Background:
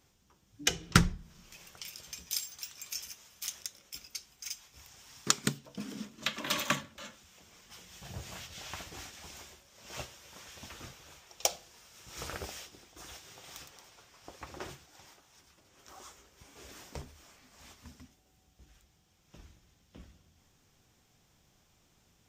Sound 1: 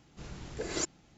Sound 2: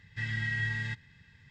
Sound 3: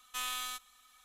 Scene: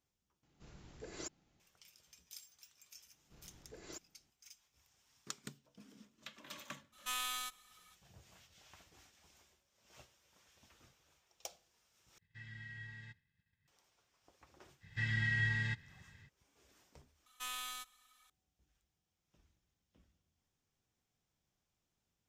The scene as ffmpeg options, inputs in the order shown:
ffmpeg -i bed.wav -i cue0.wav -i cue1.wav -i cue2.wav -filter_complex "[1:a]asplit=2[link_01][link_02];[3:a]asplit=2[link_03][link_04];[2:a]asplit=2[link_05][link_06];[0:a]volume=-18.5dB[link_07];[link_01]asoftclip=type=hard:threshold=-21dB[link_08];[link_05]agate=range=-33dB:threshold=-53dB:ratio=3:release=100:detection=peak[link_09];[link_07]asplit=4[link_10][link_11][link_12][link_13];[link_10]atrim=end=0.434[link_14];[link_08]atrim=end=1.17,asetpts=PTS-STARTPTS,volume=-13dB[link_15];[link_11]atrim=start=1.596:end=12.184[link_16];[link_09]atrim=end=1.5,asetpts=PTS-STARTPTS,volume=-18dB[link_17];[link_12]atrim=start=13.676:end=17.264[link_18];[link_04]atrim=end=1.04,asetpts=PTS-STARTPTS,volume=-6dB[link_19];[link_13]atrim=start=18.296[link_20];[link_02]atrim=end=1.17,asetpts=PTS-STARTPTS,volume=-17.5dB,afade=type=in:duration=0.004:curve=hsin,afade=type=out:start_time=1.166:duration=0.004:curve=hsin,adelay=138033S[link_21];[link_03]atrim=end=1.04,asetpts=PTS-STARTPTS,volume=-2dB,afade=type=in:duration=0.02,afade=type=out:start_time=1.02:duration=0.02,adelay=6920[link_22];[link_06]atrim=end=1.5,asetpts=PTS-STARTPTS,volume=-2dB,afade=type=in:duration=0.05,afade=type=out:start_time=1.45:duration=0.05,adelay=14800[link_23];[link_14][link_15]acrossfade=duration=0.004:curve1=hsin:curve2=hsin[link_24];[link_24][link_16]acrossfade=duration=0.004:curve1=hsin:curve2=hsin[link_25];[link_25][link_17]acrossfade=duration=0.004:curve1=hsin:curve2=hsin[link_26];[link_26][link_18]acrossfade=duration=0.004:curve1=hsin:curve2=hsin[link_27];[link_27][link_19]acrossfade=duration=0.004:curve1=hsin:curve2=hsin[link_28];[link_28][link_20]acrossfade=duration=0.004:curve1=hsin:curve2=hsin[link_29];[link_29][link_21][link_22][link_23]amix=inputs=4:normalize=0" out.wav

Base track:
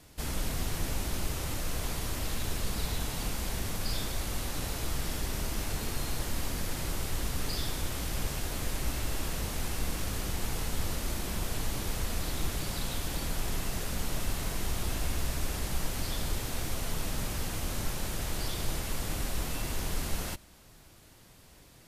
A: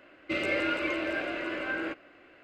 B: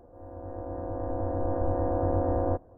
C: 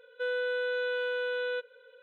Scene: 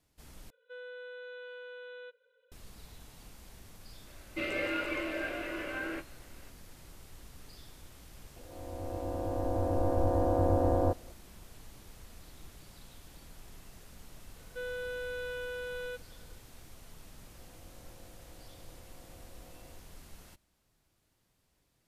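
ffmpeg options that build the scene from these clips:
ffmpeg -i bed.wav -i cue0.wav -i cue1.wav -i cue2.wav -filter_complex "[3:a]asplit=2[link_01][link_02];[2:a]asplit=2[link_03][link_04];[0:a]volume=-19dB[link_05];[1:a]asplit=2[link_06][link_07];[link_07]adelay=24,volume=-10.5dB[link_08];[link_06][link_08]amix=inputs=2:normalize=0[link_09];[link_04]acompressor=threshold=-41dB:ratio=6:attack=3.2:release=140:knee=1:detection=peak[link_10];[link_05]asplit=2[link_11][link_12];[link_11]atrim=end=0.504[link_13];[link_01]atrim=end=2.02,asetpts=PTS-STARTPTS,volume=-14.5dB[link_14];[link_12]atrim=start=2.516[link_15];[link_09]atrim=end=2.43,asetpts=PTS-STARTPTS,volume=-5dB,afade=type=in:duration=0.004:curve=hsin,afade=type=out:start_time=2.426:duration=0.004:curve=hsin,adelay=4070[link_16];[link_03]atrim=end=2.77,asetpts=PTS-STARTPTS,volume=-0.5dB,afade=type=in:duration=0.004:curve=hsin,afade=type=out:start_time=2.766:duration=0.004:curve=hsin,adelay=8360[link_17];[link_02]atrim=end=2.02,asetpts=PTS-STARTPTS,volume=-7.5dB,afade=type=in:duration=0.004:curve=hsin,afade=type=out:start_time=2.016:duration=0.004:curve=hsin,adelay=14360[link_18];[link_10]atrim=end=2.77,asetpts=PTS-STARTPTS,volume=-14dB,afade=type=in:duration=0.004:curve=hsin,afade=type=out:start_time=2.766:duration=0.004:curve=hsin,adelay=17220[link_19];[link_13][link_14]acrossfade=duration=0.004:curve1=hsin:curve2=hsin[link_20];[link_20][link_15]acrossfade=duration=0.004:curve1=hsin:curve2=hsin[link_21];[link_21][link_16][link_17][link_18][link_19]amix=inputs=5:normalize=0" out.wav

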